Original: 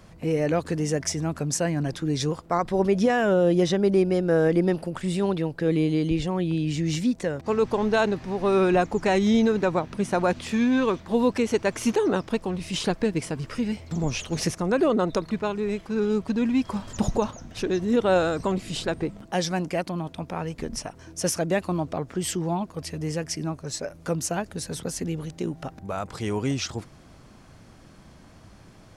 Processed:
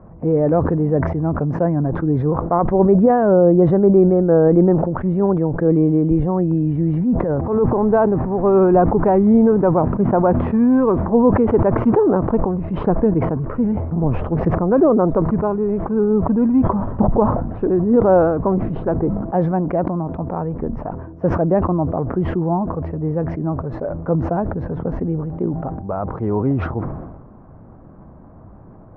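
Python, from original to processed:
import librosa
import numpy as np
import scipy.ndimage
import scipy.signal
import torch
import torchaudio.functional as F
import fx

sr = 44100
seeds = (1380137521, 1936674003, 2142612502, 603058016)

y = fx.transient(x, sr, attack_db=-7, sustain_db=10, at=(6.92, 7.76), fade=0.02)
y = scipy.signal.sosfilt(scipy.signal.butter(4, 1100.0, 'lowpass', fs=sr, output='sos'), y)
y = fx.sustainer(y, sr, db_per_s=46.0)
y = y * 10.0 ** (7.5 / 20.0)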